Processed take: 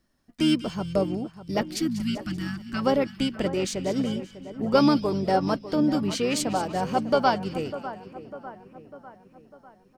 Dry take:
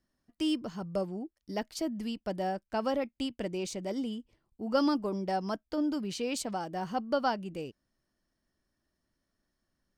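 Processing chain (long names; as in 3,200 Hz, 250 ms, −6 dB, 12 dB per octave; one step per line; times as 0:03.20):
time-frequency box erased 0:01.62–0:02.82, 350–1,100 Hz
echo with a time of its own for lows and highs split 2,200 Hz, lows 599 ms, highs 192 ms, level −13 dB
pitch-shifted copies added −12 semitones −13 dB, −5 semitones −11 dB
level +7.5 dB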